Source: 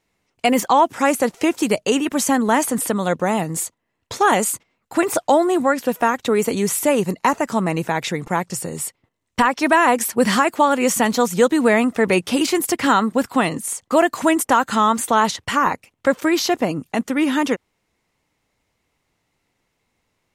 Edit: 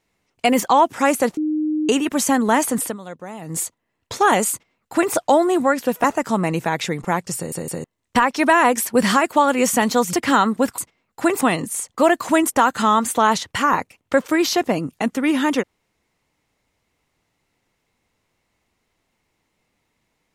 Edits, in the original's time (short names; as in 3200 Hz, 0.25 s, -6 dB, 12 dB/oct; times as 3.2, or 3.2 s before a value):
1.37–1.89 bleep 307 Hz -18 dBFS
2.81–3.57 dip -14.5 dB, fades 0.16 s
4.51–5.14 copy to 13.34
6.04–7.27 cut
8.59 stutter in place 0.16 s, 3 plays
11.36–12.69 cut